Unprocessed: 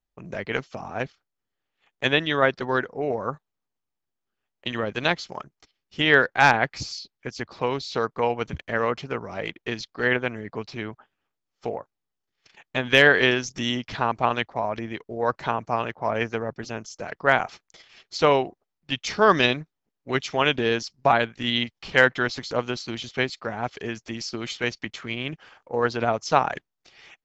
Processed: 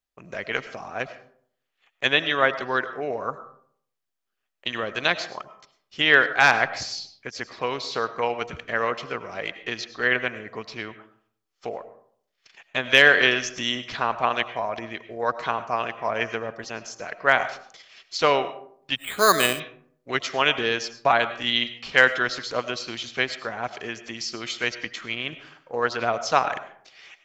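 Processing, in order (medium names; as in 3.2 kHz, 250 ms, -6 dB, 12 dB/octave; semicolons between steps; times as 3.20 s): bass shelf 430 Hz -11 dB; band-stop 870 Hz, Q 12; algorithmic reverb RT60 0.6 s, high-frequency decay 0.45×, pre-delay 60 ms, DRR 12.5 dB; 18.96–19.60 s: careless resampling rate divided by 8×, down filtered, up hold; trim +2.5 dB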